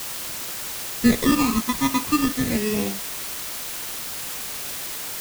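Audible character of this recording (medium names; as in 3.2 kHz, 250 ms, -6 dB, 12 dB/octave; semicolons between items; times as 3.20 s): aliases and images of a low sample rate 1.5 kHz, jitter 0%; phasing stages 12, 0.42 Hz, lowest notch 490–1500 Hz; a quantiser's noise floor 6-bit, dither triangular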